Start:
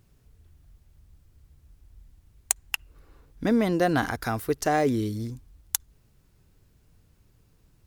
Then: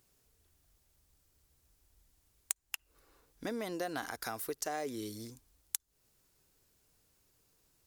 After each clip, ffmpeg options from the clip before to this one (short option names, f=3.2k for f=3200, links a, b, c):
-af "bass=f=250:g=-13,treble=f=4k:g=8,acompressor=threshold=-30dB:ratio=3,volume=-6dB"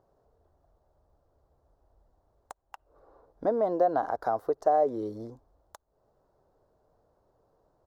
-af "firequalizer=gain_entry='entry(250,0);entry(610,14);entry(2400,-23);entry(4000,-17);entry(9100,-29)':delay=0.05:min_phase=1,volume=4dB"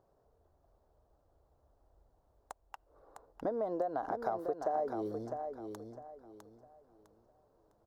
-filter_complex "[0:a]acompressor=threshold=-29dB:ratio=4,asplit=2[a][b];[b]aecho=0:1:655|1310|1965|2620:0.473|0.137|0.0398|0.0115[c];[a][c]amix=inputs=2:normalize=0,volume=-3dB"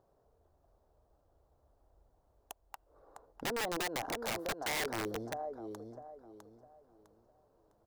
-af "aeval=exprs='(mod(31.6*val(0)+1,2)-1)/31.6':c=same"